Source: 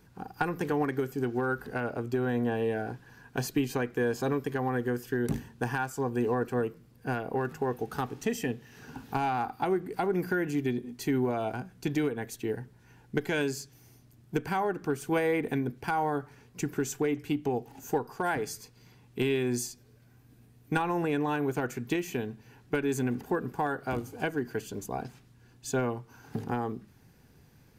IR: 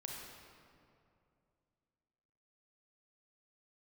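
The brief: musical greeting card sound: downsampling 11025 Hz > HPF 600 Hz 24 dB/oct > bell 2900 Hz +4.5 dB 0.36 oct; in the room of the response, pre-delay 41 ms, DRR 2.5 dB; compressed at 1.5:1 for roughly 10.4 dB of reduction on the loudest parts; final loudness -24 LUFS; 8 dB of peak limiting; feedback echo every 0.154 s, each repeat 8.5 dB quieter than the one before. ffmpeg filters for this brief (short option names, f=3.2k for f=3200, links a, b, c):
-filter_complex "[0:a]acompressor=threshold=-54dB:ratio=1.5,alimiter=level_in=9dB:limit=-24dB:level=0:latency=1,volume=-9dB,aecho=1:1:154|308|462|616:0.376|0.143|0.0543|0.0206,asplit=2[a][b];[1:a]atrim=start_sample=2205,adelay=41[c];[b][c]afir=irnorm=-1:irlink=0,volume=-1dB[d];[a][d]amix=inputs=2:normalize=0,aresample=11025,aresample=44100,highpass=f=600:w=0.5412,highpass=f=600:w=1.3066,equalizer=f=2.9k:t=o:w=0.36:g=4.5,volume=23dB"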